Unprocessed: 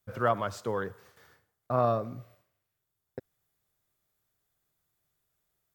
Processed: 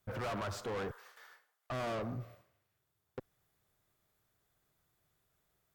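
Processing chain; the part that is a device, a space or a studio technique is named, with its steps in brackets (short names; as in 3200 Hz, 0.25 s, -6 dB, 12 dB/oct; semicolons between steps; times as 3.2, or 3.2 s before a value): 0.91–1.72 HPF 870 Hz 12 dB/oct; tube preamp driven hard (tube stage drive 41 dB, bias 0.25; high shelf 4100 Hz -6.5 dB); gain +5.5 dB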